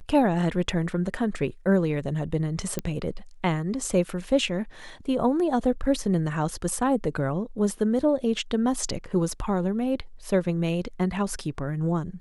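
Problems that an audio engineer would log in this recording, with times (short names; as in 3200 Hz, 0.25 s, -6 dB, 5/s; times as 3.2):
2.79 pop -13 dBFS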